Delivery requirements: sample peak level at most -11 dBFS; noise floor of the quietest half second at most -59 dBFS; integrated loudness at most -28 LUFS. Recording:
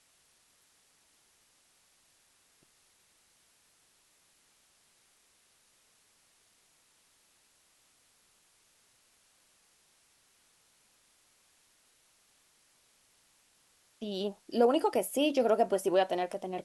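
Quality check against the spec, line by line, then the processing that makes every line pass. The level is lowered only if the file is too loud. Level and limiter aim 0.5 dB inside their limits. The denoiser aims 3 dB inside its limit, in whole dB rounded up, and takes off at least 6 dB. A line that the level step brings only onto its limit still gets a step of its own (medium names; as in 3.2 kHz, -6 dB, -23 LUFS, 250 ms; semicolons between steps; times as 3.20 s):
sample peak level -14.0 dBFS: pass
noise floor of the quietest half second -68 dBFS: pass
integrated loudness -29.5 LUFS: pass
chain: none needed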